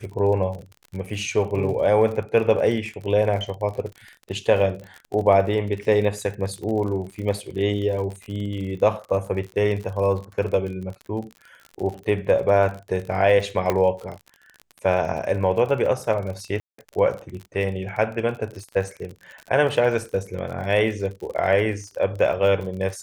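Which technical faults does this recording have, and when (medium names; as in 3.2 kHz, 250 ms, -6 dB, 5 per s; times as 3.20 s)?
crackle 44 per s -31 dBFS
13.70 s: pop -8 dBFS
16.60–16.78 s: dropout 184 ms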